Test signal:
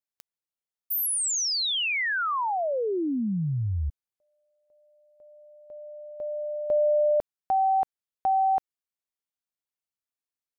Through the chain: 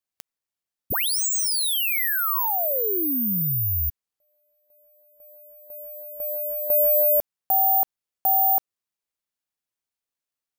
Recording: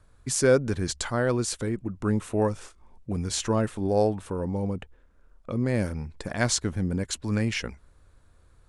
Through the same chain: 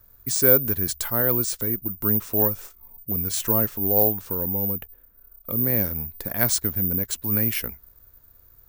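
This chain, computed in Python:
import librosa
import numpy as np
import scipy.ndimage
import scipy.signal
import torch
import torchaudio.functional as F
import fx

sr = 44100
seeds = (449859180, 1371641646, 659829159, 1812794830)

y = (np.kron(x[::3], np.eye(3)[0]) * 3)[:len(x)]
y = y * librosa.db_to_amplitude(-1.5)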